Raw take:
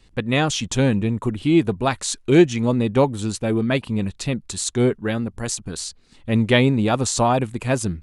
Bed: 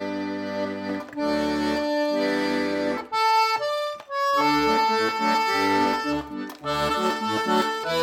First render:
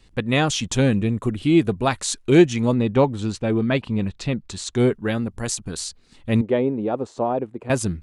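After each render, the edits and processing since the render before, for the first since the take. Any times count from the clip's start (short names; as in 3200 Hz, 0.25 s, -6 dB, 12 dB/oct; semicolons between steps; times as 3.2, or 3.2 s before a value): 0.81–1.82 notch 920 Hz, Q 5.1; 2.74–4.73 air absorption 86 m; 6.41–7.7 band-pass 440 Hz, Q 1.3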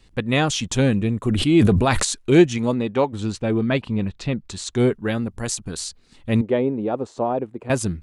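1.26–2.05 sustainer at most 22 dB/s; 2.57–3.12 HPF 120 Hz -> 500 Hz 6 dB/oct; 3.93–4.45 high shelf 7900 Hz -8 dB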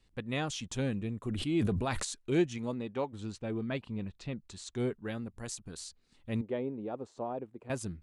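gain -14.5 dB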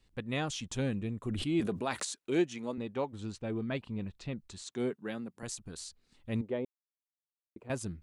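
1.6–2.78 HPF 220 Hz; 4.62–5.43 HPF 150 Hz 24 dB/oct; 6.65–7.56 mute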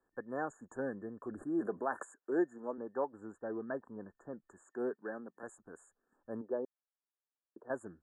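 FFT band-reject 1800–6700 Hz; three-band isolator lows -23 dB, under 280 Hz, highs -20 dB, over 4100 Hz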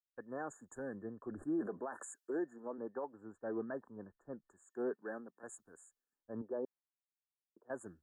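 limiter -32.5 dBFS, peak gain reduction 11 dB; three-band expander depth 100%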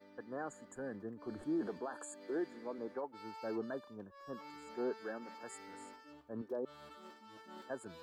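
add bed -31.5 dB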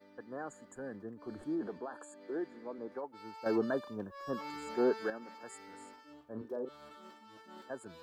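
1.55–2.92 high shelf 3800 Hz -8 dB; 3.46–5.1 gain +8.5 dB; 5.94–7.24 doubler 37 ms -7.5 dB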